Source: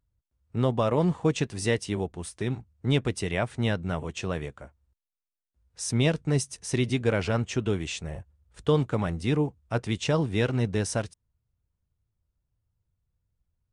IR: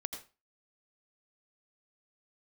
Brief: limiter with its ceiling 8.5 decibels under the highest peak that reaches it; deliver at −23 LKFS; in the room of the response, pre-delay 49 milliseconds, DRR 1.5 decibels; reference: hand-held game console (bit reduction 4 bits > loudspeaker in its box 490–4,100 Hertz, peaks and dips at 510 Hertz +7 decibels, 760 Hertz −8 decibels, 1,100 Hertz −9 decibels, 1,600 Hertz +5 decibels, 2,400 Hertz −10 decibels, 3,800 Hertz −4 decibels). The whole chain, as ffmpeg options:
-filter_complex "[0:a]alimiter=limit=-20.5dB:level=0:latency=1,asplit=2[link_01][link_02];[1:a]atrim=start_sample=2205,adelay=49[link_03];[link_02][link_03]afir=irnorm=-1:irlink=0,volume=-1.5dB[link_04];[link_01][link_04]amix=inputs=2:normalize=0,acrusher=bits=3:mix=0:aa=0.000001,highpass=490,equalizer=frequency=510:width_type=q:width=4:gain=7,equalizer=frequency=760:width_type=q:width=4:gain=-8,equalizer=frequency=1100:width_type=q:width=4:gain=-9,equalizer=frequency=1600:width_type=q:width=4:gain=5,equalizer=frequency=2400:width_type=q:width=4:gain=-10,equalizer=frequency=3800:width_type=q:width=4:gain=-4,lowpass=frequency=4100:width=0.5412,lowpass=frequency=4100:width=1.3066,volume=10.5dB"

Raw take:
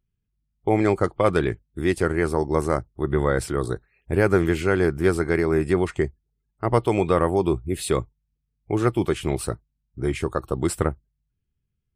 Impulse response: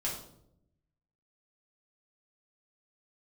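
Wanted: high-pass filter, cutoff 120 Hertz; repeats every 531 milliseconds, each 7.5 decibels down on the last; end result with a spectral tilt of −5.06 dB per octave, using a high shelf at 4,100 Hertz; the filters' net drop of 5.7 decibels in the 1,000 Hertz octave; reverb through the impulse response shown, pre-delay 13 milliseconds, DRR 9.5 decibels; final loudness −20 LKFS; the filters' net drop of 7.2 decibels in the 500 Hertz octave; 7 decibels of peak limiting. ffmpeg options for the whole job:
-filter_complex "[0:a]highpass=120,equalizer=frequency=500:width_type=o:gain=-9,equalizer=frequency=1000:width_type=o:gain=-5.5,highshelf=frequency=4100:gain=5,alimiter=limit=-16.5dB:level=0:latency=1,aecho=1:1:531|1062|1593|2124|2655:0.422|0.177|0.0744|0.0312|0.0131,asplit=2[link_01][link_02];[1:a]atrim=start_sample=2205,adelay=13[link_03];[link_02][link_03]afir=irnorm=-1:irlink=0,volume=-13dB[link_04];[link_01][link_04]amix=inputs=2:normalize=0,volume=8.5dB"

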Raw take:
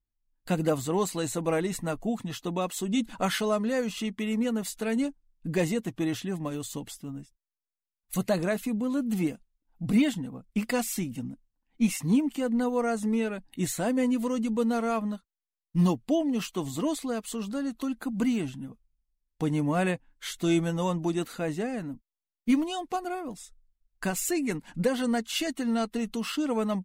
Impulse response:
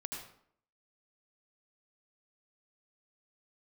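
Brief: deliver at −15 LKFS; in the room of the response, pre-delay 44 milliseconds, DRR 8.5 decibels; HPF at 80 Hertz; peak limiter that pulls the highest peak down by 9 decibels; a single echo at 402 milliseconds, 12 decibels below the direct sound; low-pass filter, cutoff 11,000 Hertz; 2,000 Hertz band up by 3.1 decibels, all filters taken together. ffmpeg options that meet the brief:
-filter_complex "[0:a]highpass=80,lowpass=11000,equalizer=frequency=2000:width_type=o:gain=4,alimiter=limit=-22dB:level=0:latency=1,aecho=1:1:402:0.251,asplit=2[link_01][link_02];[1:a]atrim=start_sample=2205,adelay=44[link_03];[link_02][link_03]afir=irnorm=-1:irlink=0,volume=-8dB[link_04];[link_01][link_04]amix=inputs=2:normalize=0,volume=16dB"

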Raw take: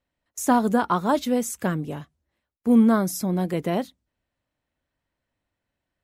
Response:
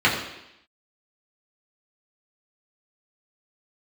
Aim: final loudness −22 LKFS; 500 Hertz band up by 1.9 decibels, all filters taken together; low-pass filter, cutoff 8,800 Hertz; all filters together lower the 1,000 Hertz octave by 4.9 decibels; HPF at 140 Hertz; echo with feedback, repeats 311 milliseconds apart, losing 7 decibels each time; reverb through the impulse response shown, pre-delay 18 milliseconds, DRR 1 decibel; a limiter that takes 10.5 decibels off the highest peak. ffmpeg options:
-filter_complex "[0:a]highpass=140,lowpass=8800,equalizer=frequency=500:width_type=o:gain=4.5,equalizer=frequency=1000:width_type=o:gain=-8.5,alimiter=limit=-18.5dB:level=0:latency=1,aecho=1:1:311|622|933|1244|1555:0.447|0.201|0.0905|0.0407|0.0183,asplit=2[link_01][link_02];[1:a]atrim=start_sample=2205,adelay=18[link_03];[link_02][link_03]afir=irnorm=-1:irlink=0,volume=-21dB[link_04];[link_01][link_04]amix=inputs=2:normalize=0,volume=4dB"

